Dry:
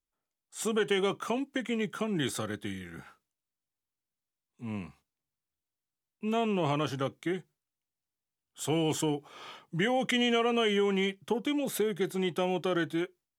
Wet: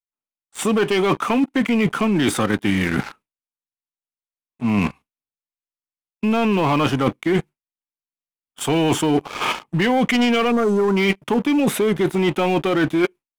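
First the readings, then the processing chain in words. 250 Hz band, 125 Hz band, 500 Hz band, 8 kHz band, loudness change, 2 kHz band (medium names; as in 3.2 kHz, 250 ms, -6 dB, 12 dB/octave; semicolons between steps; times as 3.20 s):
+13.5 dB, +12.5 dB, +10.0 dB, +8.5 dB, +11.0 dB, +11.5 dB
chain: fifteen-band graphic EQ 250 Hz +6 dB, 1 kHz +7 dB, 2.5 kHz +10 dB, 10 kHz +7 dB; spectral selection erased 10.51–10.96 s, 1.5–5.5 kHz; gate with hold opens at -50 dBFS; treble shelf 2.9 kHz -10.5 dB; in parallel at +2 dB: level held to a coarse grid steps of 11 dB; on the sum: waveshaping leveller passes 3; reverse; compression 12:1, threshold -22 dBFS, peak gain reduction 13.5 dB; reverse; trim +6.5 dB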